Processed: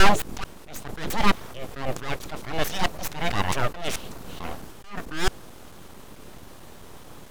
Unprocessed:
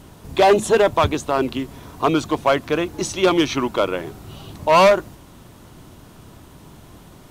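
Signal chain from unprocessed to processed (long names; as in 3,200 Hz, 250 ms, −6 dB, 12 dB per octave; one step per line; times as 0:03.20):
slices reordered back to front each 220 ms, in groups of 3
full-wave rectification
level that may rise only so fast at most 110 dB per second
level +2 dB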